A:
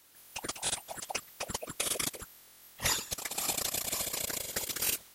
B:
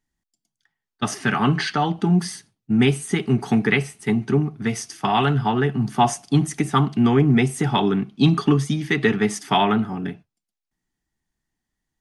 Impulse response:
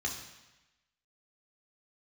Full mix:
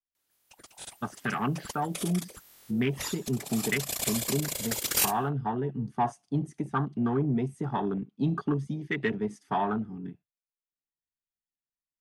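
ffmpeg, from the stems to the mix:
-filter_complex "[0:a]dynaudnorm=framelen=440:gausssize=3:maxgain=10.5dB,adelay=150,volume=-1.5dB,afade=type=in:start_time=0.92:duration=0.65:silence=0.354813,afade=type=in:start_time=3.25:duration=0.79:silence=0.421697[link_01];[1:a]afwtdn=0.0708,lowshelf=frequency=400:gain=-3.5,asoftclip=type=tanh:threshold=-7.5dB,volume=-7.5dB,asplit=2[link_02][link_03];[link_03]apad=whole_len=233501[link_04];[link_01][link_04]sidechaincompress=threshold=-33dB:ratio=10:attack=7.1:release=564[link_05];[link_05][link_02]amix=inputs=2:normalize=0"

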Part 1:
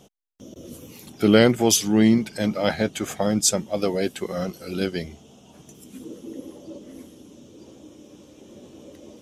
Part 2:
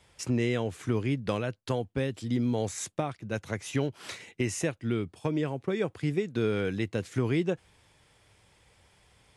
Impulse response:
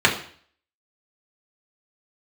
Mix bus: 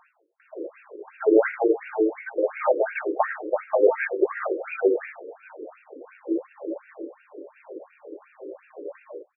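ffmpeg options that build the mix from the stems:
-filter_complex "[0:a]acompressor=threshold=-22dB:ratio=6,volume=-0.5dB,asplit=3[link_01][link_02][link_03];[link_02]volume=-7.5dB[link_04];[link_03]volume=-7.5dB[link_05];[1:a]adelay=250,volume=-19.5dB[link_06];[2:a]atrim=start_sample=2205[link_07];[link_04][link_07]afir=irnorm=-1:irlink=0[link_08];[link_05]aecho=0:1:652|1304|1956|2608|3260|3912|4564|5216:1|0.55|0.303|0.166|0.0915|0.0503|0.0277|0.0152[link_09];[link_01][link_06][link_08][link_09]amix=inputs=4:normalize=0,afftfilt=real='re*between(b*sr/1024,390*pow(2000/390,0.5+0.5*sin(2*PI*2.8*pts/sr))/1.41,390*pow(2000/390,0.5+0.5*sin(2*PI*2.8*pts/sr))*1.41)':imag='im*between(b*sr/1024,390*pow(2000/390,0.5+0.5*sin(2*PI*2.8*pts/sr))/1.41,390*pow(2000/390,0.5+0.5*sin(2*PI*2.8*pts/sr))*1.41)':win_size=1024:overlap=0.75"

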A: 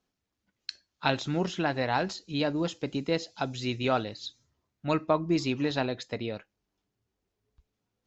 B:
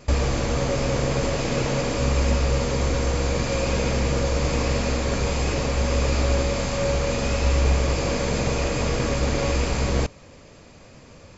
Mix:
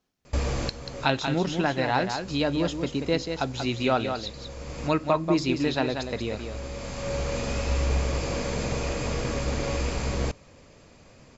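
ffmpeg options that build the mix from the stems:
ffmpeg -i stem1.wav -i stem2.wav -filter_complex "[0:a]volume=-2.5dB,asplit=3[link_01][link_02][link_03];[link_02]volume=-7dB[link_04];[1:a]adelay=250,volume=-10.5dB[link_05];[link_03]apad=whole_len=512831[link_06];[link_05][link_06]sidechaincompress=threshold=-43dB:ratio=6:attack=8.5:release=943[link_07];[link_04]aecho=0:1:186:1[link_08];[link_01][link_07][link_08]amix=inputs=3:normalize=0,acontrast=32" out.wav

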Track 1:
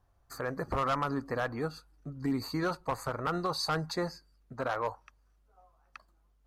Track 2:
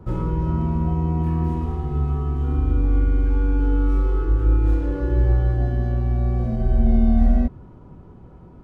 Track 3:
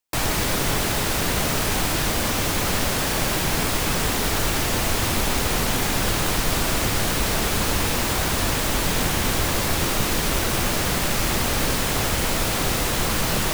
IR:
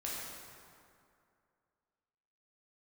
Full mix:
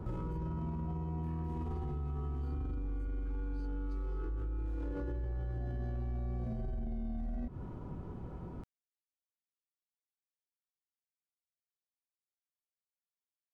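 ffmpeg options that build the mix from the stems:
-filter_complex "[0:a]acompressor=threshold=-36dB:ratio=6,volume=-19dB[link_01];[1:a]acompressor=threshold=-20dB:ratio=6,volume=0dB[link_02];[link_01][link_02]amix=inputs=2:normalize=0,alimiter=level_in=2.5dB:limit=-24dB:level=0:latency=1:release=17,volume=-2.5dB,volume=0dB,acompressor=threshold=-36dB:ratio=3"

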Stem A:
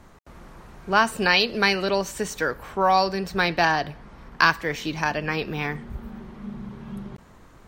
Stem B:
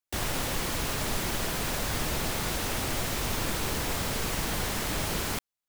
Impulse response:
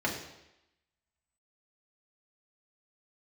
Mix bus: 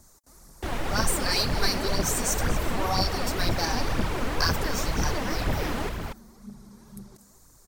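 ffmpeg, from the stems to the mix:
-filter_complex "[0:a]aexciter=amount=9:drive=9.8:freq=4600,volume=-11.5dB,asplit=2[link_01][link_02];[link_02]volume=-14.5dB[link_03];[1:a]aemphasis=mode=reproduction:type=cd,adelay=500,volume=1dB,asplit=2[link_04][link_05];[link_05]volume=-4.5dB[link_06];[link_03][link_06]amix=inputs=2:normalize=0,aecho=0:1:237:1[link_07];[link_01][link_04][link_07]amix=inputs=3:normalize=0,highshelf=frequency=2700:gain=-8,aphaser=in_gain=1:out_gain=1:delay=4.5:decay=0.51:speed=2:type=triangular"

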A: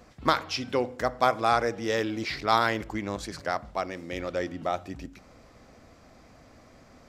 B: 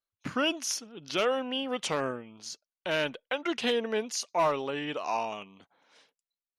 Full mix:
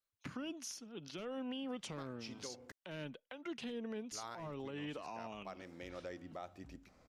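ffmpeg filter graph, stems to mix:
ffmpeg -i stem1.wav -i stem2.wav -filter_complex "[0:a]adelay=1700,volume=-13dB,asplit=3[link_01][link_02][link_03];[link_01]atrim=end=2.72,asetpts=PTS-STARTPTS,afade=type=out:start_time=2.716:duration=0.004:curve=hsin[link_04];[link_02]atrim=start=2.72:end=4.11,asetpts=PTS-STARTPTS,volume=0[link_05];[link_03]atrim=start=4.11,asetpts=PTS-STARTPTS,afade=type=in:duration=0.004:curve=hsin[link_06];[link_04][link_05][link_06]concat=n=3:v=0:a=1[link_07];[1:a]acrossover=split=270[link_08][link_09];[link_09]acompressor=threshold=-41dB:ratio=10[link_10];[link_08][link_10]amix=inputs=2:normalize=0,volume=-1.5dB,asplit=2[link_11][link_12];[link_12]apad=whole_len=387240[link_13];[link_07][link_13]sidechaincompress=threshold=-53dB:ratio=4:attack=16:release=148[link_14];[link_14][link_11]amix=inputs=2:normalize=0,alimiter=level_in=10.5dB:limit=-24dB:level=0:latency=1:release=207,volume=-10.5dB" out.wav

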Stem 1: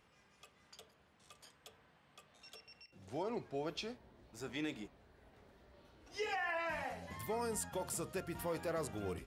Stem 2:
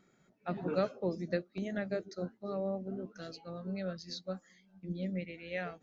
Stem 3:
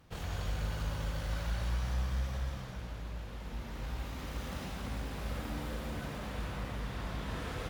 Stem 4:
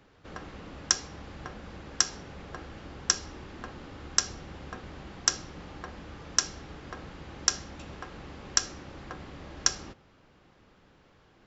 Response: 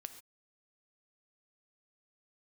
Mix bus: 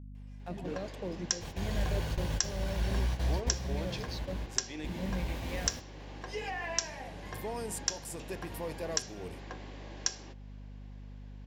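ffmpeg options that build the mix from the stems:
-filter_complex "[0:a]adelay=150,volume=1dB[link_01];[1:a]aeval=exprs='sgn(val(0))*max(abs(val(0))-0.00211,0)':channel_layout=same,alimiter=level_in=6dB:limit=-24dB:level=0:latency=1:release=28,volume=-6dB,volume=0.5dB,asplit=2[link_02][link_03];[2:a]adelay=1300,volume=3dB[link_04];[3:a]highpass=300,adelay=400,volume=-1dB[link_05];[link_03]apad=whole_len=396739[link_06];[link_04][link_06]sidechaingate=range=-33dB:threshold=-52dB:ratio=16:detection=peak[link_07];[link_01][link_02][link_07][link_05]amix=inputs=4:normalize=0,equalizer=frequency=1300:width_type=o:width=0.21:gain=-14.5,aeval=exprs='val(0)+0.00562*(sin(2*PI*50*n/s)+sin(2*PI*2*50*n/s)/2+sin(2*PI*3*50*n/s)/3+sin(2*PI*4*50*n/s)/4+sin(2*PI*5*50*n/s)/5)':channel_layout=same,alimiter=limit=-12.5dB:level=0:latency=1:release=469"

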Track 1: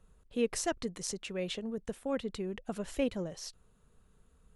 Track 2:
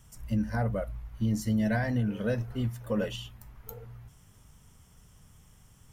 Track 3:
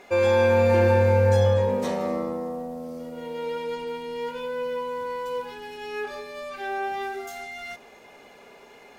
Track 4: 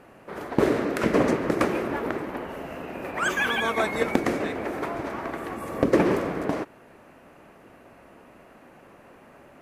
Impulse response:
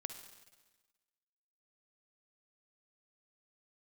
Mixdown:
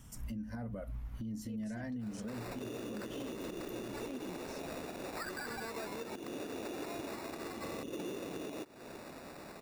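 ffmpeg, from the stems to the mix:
-filter_complex "[0:a]adelay=1100,volume=-6dB[link_01];[1:a]volume=1dB[link_02];[3:a]adynamicequalizer=threshold=0.0178:dfrequency=340:dqfactor=0.88:tfrequency=340:tqfactor=0.88:attack=5:release=100:ratio=0.375:range=3:mode=boostabove:tftype=bell,acompressor=threshold=-36dB:ratio=2,acrusher=samples=14:mix=1:aa=0.000001,adelay=2000,volume=1dB[link_03];[link_01][link_02]amix=inputs=2:normalize=0,equalizer=frequency=250:width=3.1:gain=12,acompressor=threshold=-29dB:ratio=5,volume=0dB[link_04];[link_03][link_04]amix=inputs=2:normalize=0,alimiter=level_in=10dB:limit=-24dB:level=0:latency=1:release=252,volume=-10dB"

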